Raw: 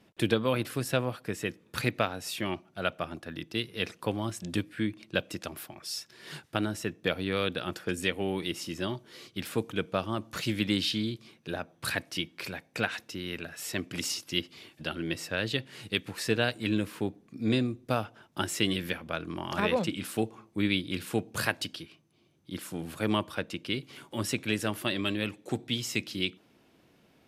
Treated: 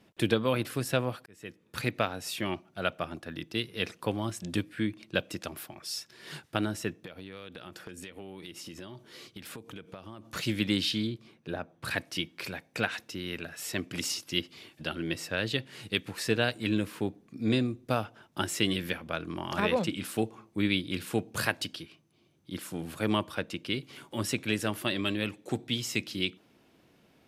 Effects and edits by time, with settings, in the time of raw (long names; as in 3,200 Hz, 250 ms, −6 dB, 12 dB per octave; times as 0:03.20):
0:01.26–0:02.29: fade in equal-power
0:07.02–0:10.29: downward compressor 16 to 1, threshold −39 dBFS
0:11.07–0:11.91: high-shelf EQ 2,500 Hz −8.5 dB